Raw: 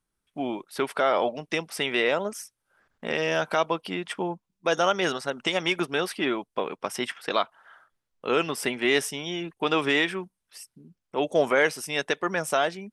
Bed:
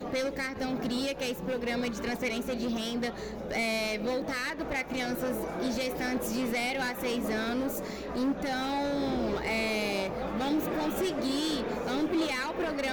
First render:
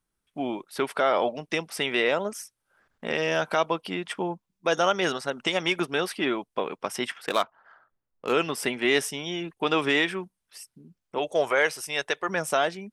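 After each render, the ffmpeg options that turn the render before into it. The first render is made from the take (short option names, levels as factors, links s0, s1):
-filter_complex "[0:a]asettb=1/sr,asplit=3[s0][s1][s2];[s0]atrim=end=7.264[s3];[s1]atrim=start=7.26:end=8.33,asetpts=PTS-STARTPTS,afade=t=in:d=0.004:c=qsin,afade=t=out:st=1.066:d=0.004:c=qsin,adynamicsmooth=sensitivity=8:basefreq=1700[s4];[s2]atrim=start=8.326[s5];[s3][s4]acrossfade=d=0.004:c1=hsin:c2=qsin[s6];[s6][s5]acrossfade=d=0.004:c1=qsin:c2=hsin,asettb=1/sr,asplit=3[s7][s8][s9];[s7]atrim=end=11.184[s10];[s8]atrim=start=11.18:end=12.29,asetpts=PTS-STARTPTS,afade=t=in:d=0.004:c=qsin,afade=t=out:st=1.106:d=0.004:c=qsin,equalizer=f=220:w=1.5:g=-14[s11];[s9]atrim=start=12.286[s12];[s10][s11]acrossfade=d=0.004:c1=hsin:c2=qsin[s13];[s13][s12]acrossfade=d=0.004:c1=qsin:c2=hsin"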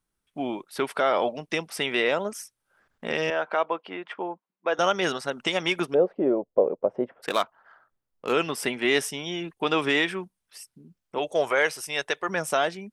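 -filter_complex "[0:a]asettb=1/sr,asplit=3[s0][s1][s2];[s0]atrim=end=3.304[s3];[s1]atrim=start=3.3:end=4.79,asetpts=PTS-STARTPTS,afade=t=in:d=0.004:c=qsin,afade=t=out:st=1.486:d=0.004:c=qsin,highpass=380,lowpass=2100[s4];[s2]atrim=start=4.786[s5];[s3][s4]acrossfade=d=0.004:c1=hsin:c2=qsin[s6];[s6][s5]acrossfade=d=0.004:c1=qsin:c2=hsin,asplit=3[s7][s8][s9];[s7]afade=t=out:st=5.93:d=0.02[s10];[s8]lowpass=f=550:t=q:w=4.3,afade=t=in:st=5.93:d=0.02,afade=t=out:st=7.22:d=0.02[s11];[s9]afade=t=in:st=7.22:d=0.02[s12];[s10][s11][s12]amix=inputs=3:normalize=0"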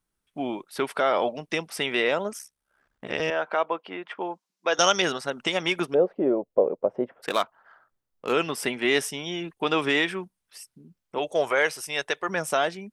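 -filter_complex "[0:a]asettb=1/sr,asplit=3[s0][s1][s2];[s0]atrim=end=2.384[s3];[s1]atrim=start=2.38:end=3.2,asetpts=PTS-STARTPTS,afade=t=in:d=0.004:c=qsin,afade=t=out:st=0.816:d=0.004:c=qsin,aeval=exprs='val(0)*sin(2*PI*34*n/s)':c=same[s4];[s2]atrim=start=3.196[s5];[s3][s4]acrossfade=d=0.004:c1=hsin:c2=qsin[s6];[s6][s5]acrossfade=d=0.004:c1=qsin:c2=hsin,asettb=1/sr,asplit=3[s7][s8][s9];[s7]atrim=end=4.214[s10];[s8]atrim=start=4.21:end=5.02,asetpts=PTS-STARTPTS,afade=t=in:d=0.004:c=qsin,afade=t=out:st=0.806:d=0.004:c=qsin,equalizer=f=5700:w=0.67:g=15[s11];[s9]atrim=start=5.016[s12];[s10][s11]acrossfade=d=0.004:c1=hsin:c2=qsin[s13];[s13][s12]acrossfade=d=0.004:c1=qsin:c2=hsin"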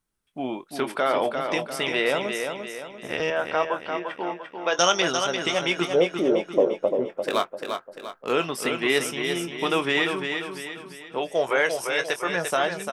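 -filter_complex "[0:a]asplit=2[s0][s1];[s1]adelay=23,volume=0.282[s2];[s0][s2]amix=inputs=2:normalize=0,aecho=1:1:346|692|1038|1384|1730:0.501|0.221|0.097|0.0427|0.0188"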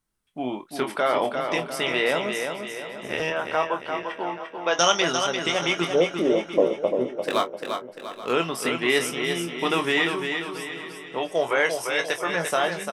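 -filter_complex "[0:a]asplit=2[s0][s1];[s1]adelay=24,volume=0.398[s2];[s0][s2]amix=inputs=2:normalize=0,aecho=1:1:830:0.15"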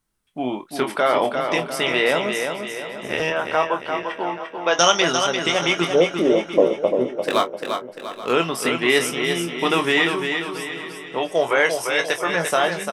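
-af "volume=1.58,alimiter=limit=0.708:level=0:latency=1"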